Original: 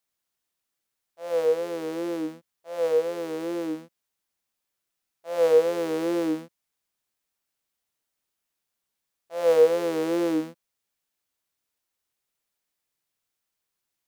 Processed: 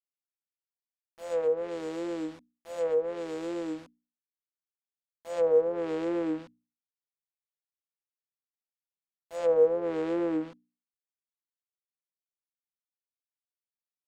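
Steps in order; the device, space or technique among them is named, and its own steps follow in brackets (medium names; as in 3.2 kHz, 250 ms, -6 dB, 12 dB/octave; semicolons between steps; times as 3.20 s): early 8-bit sampler (sample-rate reducer 7.5 kHz, jitter 0%; bit crusher 8-bit); hum notches 60/120/180/240/300 Hz; low-pass that closes with the level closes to 1 kHz, closed at -18.5 dBFS; trim -4 dB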